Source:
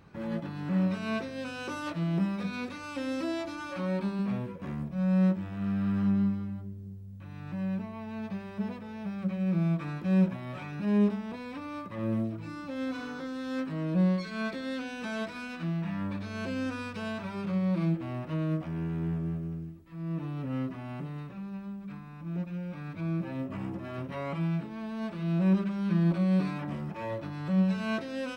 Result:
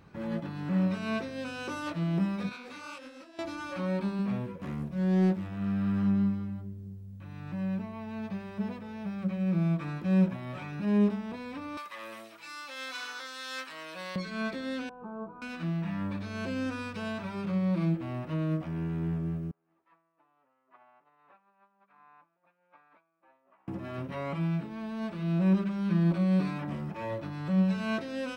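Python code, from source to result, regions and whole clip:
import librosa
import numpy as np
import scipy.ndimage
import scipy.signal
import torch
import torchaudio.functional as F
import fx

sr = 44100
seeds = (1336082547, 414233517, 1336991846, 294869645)

y = fx.chain(x, sr, fx.highpass(hz=510.0, slope=6),
    fx.over_compress(threshold_db=-41.0, ratio=-0.5),
    fx.detune_double(cents=59), at=(2.49, 3.39))
y = fx.chain(y, sr, fx.high_shelf(hz=4900.0, db=6.0),
    fx.doppler_dist(depth_ms=0.46), at=(4.61, 5.48))
y = fx.chain(y, sr, fx.highpass(hz=890.0, slope=12),
    fx.high_shelf(hz=2000.0, db=11.5), at=(11.77, 14.16))
y = fx.chain(y, sr, fx.lowpass(hz=1200.0, slope=24),
    fx.fixed_phaser(hz=390.0, stages=8), at=(14.89, 15.42))
y = fx.chain(y, sr, fx.over_compress(threshold_db=-44.0, ratio=-1.0),
    fx.ladder_bandpass(hz=1100.0, resonance_pct=30), at=(19.51, 23.68))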